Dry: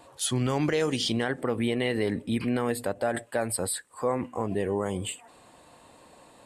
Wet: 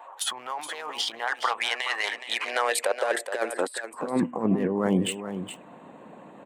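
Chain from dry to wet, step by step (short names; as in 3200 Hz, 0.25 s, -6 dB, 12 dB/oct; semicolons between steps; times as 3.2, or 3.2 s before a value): Wiener smoothing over 9 samples; 1.27–3.89 weighting filter ITU-R 468; harmonic-percussive split harmonic -6 dB; bell 6300 Hz -4 dB 1.8 oct; negative-ratio compressor -34 dBFS, ratio -0.5; high-pass sweep 870 Hz -> 190 Hz, 2.12–4.27; echo 0.42 s -10 dB; gain +5.5 dB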